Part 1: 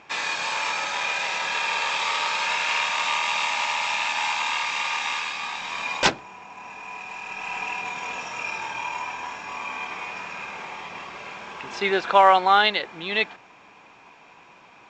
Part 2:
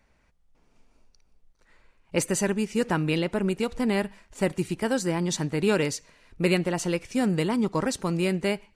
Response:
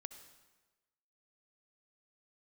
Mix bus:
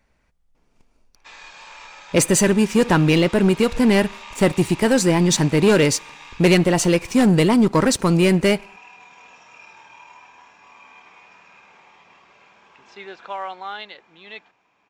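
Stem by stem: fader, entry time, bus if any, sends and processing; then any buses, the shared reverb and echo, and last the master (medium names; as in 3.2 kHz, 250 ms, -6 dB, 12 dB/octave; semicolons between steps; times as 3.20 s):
-15.0 dB, 1.15 s, no send, none
+3.0 dB, 0.00 s, send -16.5 dB, waveshaping leveller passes 2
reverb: on, RT60 1.2 s, pre-delay 58 ms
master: none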